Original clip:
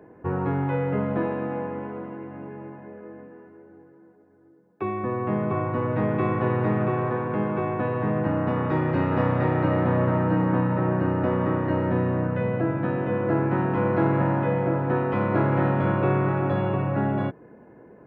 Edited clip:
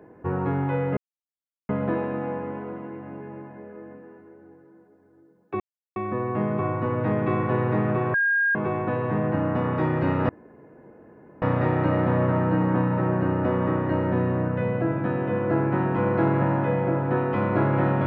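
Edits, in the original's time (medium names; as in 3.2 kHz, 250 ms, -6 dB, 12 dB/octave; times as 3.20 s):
0.97 s: insert silence 0.72 s
4.88 s: insert silence 0.36 s
7.06–7.47 s: bleep 1.62 kHz -18.5 dBFS
9.21 s: insert room tone 1.13 s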